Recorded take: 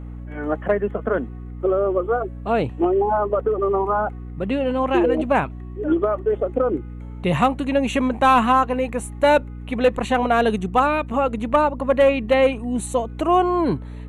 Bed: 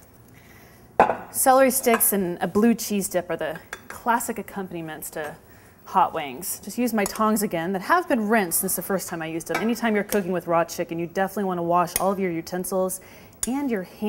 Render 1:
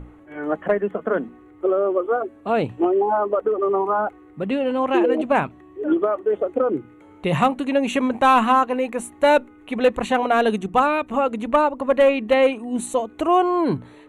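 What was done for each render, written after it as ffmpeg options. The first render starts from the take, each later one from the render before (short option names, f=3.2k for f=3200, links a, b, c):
-af "bandreject=f=60:t=h:w=6,bandreject=f=120:t=h:w=6,bandreject=f=180:t=h:w=6,bandreject=f=240:t=h:w=6"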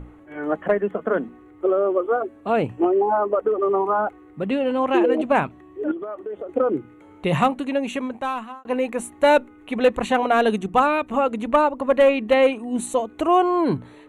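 -filter_complex "[0:a]asettb=1/sr,asplit=3[a][b][c];[a]atrim=end=2.564[d];[b]atrim=start=2.56:end=3.41,asetpts=PTS-STARTPTS,afade=t=in:d=0.004:c=qsin,afade=t=out:st=0.846:d=0.004:c=qsin,equalizer=f=3.8k:t=o:w=0.25:g=-13.5[e];[c]atrim=start=3.406[f];[d][e]acrossfade=d=0.004:c1=hsin:c2=qsin[g];[g][f]acrossfade=d=0.004:c1=qsin:c2=hsin,asettb=1/sr,asplit=3[h][i][j];[h]atrim=end=5.914[k];[i]atrim=start=5.91:end=6.49,asetpts=PTS-STARTPTS,afade=t=in:d=0.004:c=qsin,afade=t=out:st=0.576:d=0.004:c=qsin,acompressor=threshold=-28dB:ratio=6:attack=3.2:release=140:knee=1:detection=peak[l];[j]atrim=start=6.486[m];[k][l]acrossfade=d=0.004:c1=hsin:c2=qsin[n];[n][m]acrossfade=d=0.004:c1=qsin:c2=hsin,asplit=2[o][p];[o]atrim=end=8.65,asetpts=PTS-STARTPTS,afade=t=out:st=7.34:d=1.31[q];[p]atrim=start=8.65,asetpts=PTS-STARTPTS,afade=t=in:d=0.004:c=hsin[r];[q][r]concat=n=2:v=0:a=1"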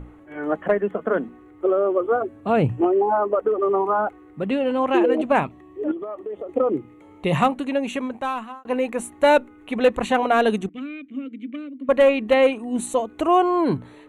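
-filter_complex "[0:a]asettb=1/sr,asplit=3[a][b][c];[a]atrim=end=2.014[d];[b]atrim=start=2.01:end=2.81,asetpts=PTS-STARTPTS,afade=t=in:d=0.004:c=qsin,afade=t=out:st=0.796:d=0.004:c=qsin,equalizer=f=120:t=o:w=1.3:g=11[e];[c]atrim=start=2.806[f];[d][e]acrossfade=d=0.004:c1=hsin:c2=qsin[g];[g][f]acrossfade=d=0.004:c1=qsin:c2=hsin,asettb=1/sr,asplit=3[h][i][j];[h]atrim=end=5.394[k];[i]atrim=start=5.39:end=7.36,asetpts=PTS-STARTPTS,afade=t=in:d=0.004:c=qsin,afade=t=out:st=1.966:d=0.004:c=qsin,bandreject=f=1.5k:w=5.4[l];[j]atrim=start=7.356[m];[k][l]acrossfade=d=0.004:c1=hsin:c2=qsin[n];[n][m]acrossfade=d=0.004:c1=qsin:c2=hsin,asettb=1/sr,asplit=3[o][p][q];[o]atrim=end=10.694[r];[p]atrim=start=10.69:end=11.89,asetpts=PTS-STARTPTS,afade=t=in:d=0.004:c=qsin,afade=t=out:st=1.196:d=0.004:c=qsin,asplit=3[s][t][u];[s]bandpass=f=270:t=q:w=8,volume=0dB[v];[t]bandpass=f=2.29k:t=q:w=8,volume=-6dB[w];[u]bandpass=f=3.01k:t=q:w=8,volume=-9dB[x];[v][w][x]amix=inputs=3:normalize=0[y];[q]atrim=start=11.886[z];[r][y]acrossfade=d=0.004:c1=hsin:c2=qsin[aa];[aa][z]acrossfade=d=0.004:c1=qsin:c2=hsin"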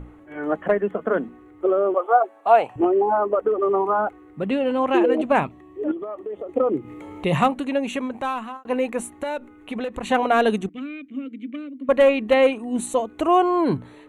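-filter_complex "[0:a]asettb=1/sr,asplit=3[a][b][c];[a]atrim=end=1.944[d];[b]atrim=start=1.94:end=2.76,asetpts=PTS-STARTPTS,afade=t=in:d=0.004:c=qsin,afade=t=out:st=0.816:d=0.004:c=qsin,highpass=f=760:t=q:w=3.4[e];[c]atrim=start=2.756[f];[d][e]acrossfade=d=0.004:c1=hsin:c2=qsin[g];[g][f]acrossfade=d=0.004:c1=qsin:c2=hsin,asettb=1/sr,asplit=3[h][i][j];[h]atrim=end=6.744[k];[i]atrim=start=6.74:end=8.57,asetpts=PTS-STARTPTS,afade=t=in:d=0.004:c=qsin,afade=t=out:st=1.826:d=0.004:c=qsin,acompressor=mode=upward:threshold=-27dB:ratio=2.5:attack=3.2:release=140:knee=2.83:detection=peak[l];[j]atrim=start=8.566[m];[k][l]acrossfade=d=0.004:c1=hsin:c2=qsin[n];[n][m]acrossfade=d=0.004:c1=qsin:c2=hsin,asettb=1/sr,asplit=3[o][p][q];[o]atrim=end=9.114[r];[p]atrim=start=9.11:end=10.08,asetpts=PTS-STARTPTS,afade=t=in:d=0.004:c=qsin,afade=t=out:st=0.966:d=0.004:c=qsin,acompressor=threshold=-24dB:ratio=12:attack=3.2:release=140:knee=1:detection=peak[s];[q]atrim=start=10.076[t];[r][s]acrossfade=d=0.004:c1=hsin:c2=qsin[u];[u][t]acrossfade=d=0.004:c1=qsin:c2=hsin"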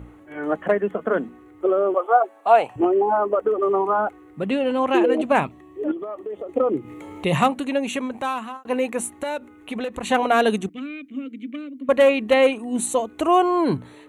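-af "highpass=51,highshelf=f=4k:g=7"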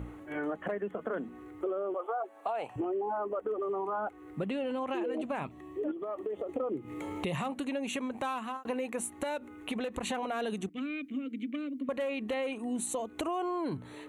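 -af "alimiter=limit=-15.5dB:level=0:latency=1:release=34,acompressor=threshold=-33dB:ratio=4"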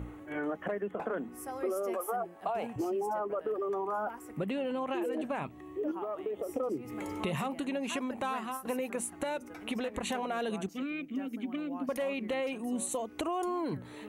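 -filter_complex "[1:a]volume=-25dB[a];[0:a][a]amix=inputs=2:normalize=0"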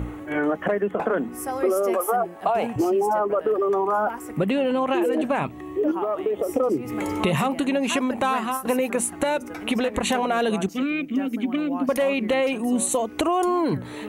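-af "volume=11.5dB"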